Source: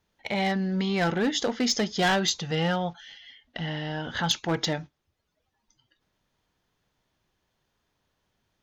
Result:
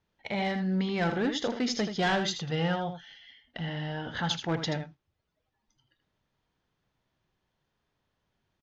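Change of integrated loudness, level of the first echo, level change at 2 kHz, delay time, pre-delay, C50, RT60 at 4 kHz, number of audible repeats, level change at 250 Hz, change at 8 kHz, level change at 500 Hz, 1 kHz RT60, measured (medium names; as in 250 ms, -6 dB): -3.5 dB, -9.0 dB, -3.5 dB, 80 ms, no reverb, no reverb, no reverb, 1, -2.5 dB, -9.0 dB, -3.0 dB, no reverb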